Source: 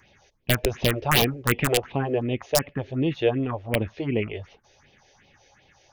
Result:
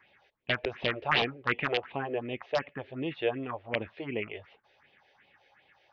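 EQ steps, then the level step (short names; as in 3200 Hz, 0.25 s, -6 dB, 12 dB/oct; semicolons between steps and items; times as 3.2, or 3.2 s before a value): Gaussian blur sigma 3.2 samples; tilt +4 dB/oct; -3.0 dB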